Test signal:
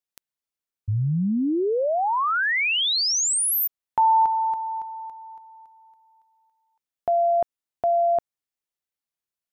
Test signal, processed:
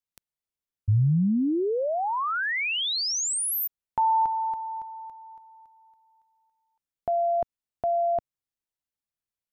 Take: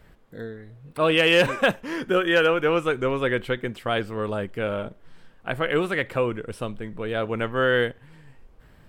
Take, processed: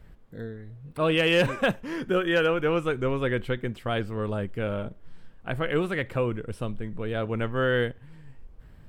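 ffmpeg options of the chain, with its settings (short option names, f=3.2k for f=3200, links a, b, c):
-af "lowshelf=f=210:g=10,volume=-5dB"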